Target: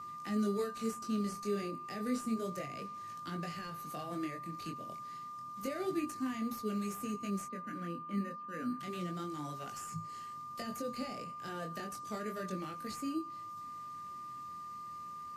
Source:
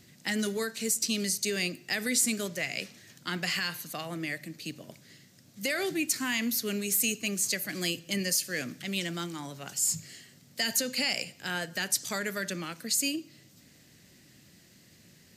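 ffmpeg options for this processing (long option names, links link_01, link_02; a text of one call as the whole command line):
ffmpeg -i in.wav -filter_complex "[0:a]acrossover=split=680[link_01][link_02];[link_02]acompressor=threshold=-43dB:ratio=8[link_03];[link_01][link_03]amix=inputs=2:normalize=0,asplit=3[link_04][link_05][link_06];[link_04]afade=type=out:start_time=7.45:duration=0.02[link_07];[link_05]highpass=210,equalizer=frequency=240:width_type=q:width=4:gain=9,equalizer=frequency=360:width_type=q:width=4:gain=-8,equalizer=frequency=660:width_type=q:width=4:gain=-9,equalizer=frequency=960:width_type=q:width=4:gain=-7,equalizer=frequency=1400:width_type=q:width=4:gain=10,equalizer=frequency=2300:width_type=q:width=4:gain=-3,lowpass=frequency=2400:width=0.5412,lowpass=frequency=2400:width=1.3066,afade=type=in:start_time=7.45:duration=0.02,afade=type=out:start_time=8.79:duration=0.02[link_08];[link_06]afade=type=in:start_time=8.79:duration=0.02[link_09];[link_07][link_08][link_09]amix=inputs=3:normalize=0,flanger=delay=18.5:depth=6.2:speed=0.3,asplit=2[link_10][link_11];[link_11]acrusher=samples=10:mix=1:aa=0.000001,volume=-7.5dB[link_12];[link_10][link_12]amix=inputs=2:normalize=0,aeval=exprs='val(0)+0.01*sin(2*PI*1200*n/s)':channel_layout=same,volume=-2.5dB" -ar 32000 -c:a libmp3lame -b:a 80k out.mp3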